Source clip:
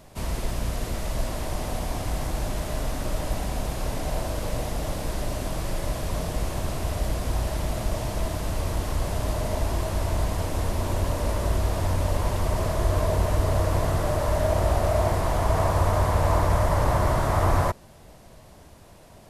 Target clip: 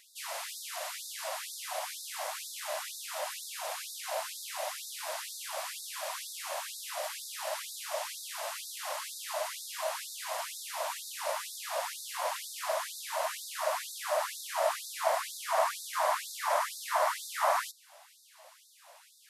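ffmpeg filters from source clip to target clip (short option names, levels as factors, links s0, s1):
-af "afftfilt=real='re*gte(b*sr/1024,500*pow(3600/500,0.5+0.5*sin(2*PI*2.1*pts/sr)))':imag='im*gte(b*sr/1024,500*pow(3600/500,0.5+0.5*sin(2*PI*2.1*pts/sr)))':win_size=1024:overlap=0.75"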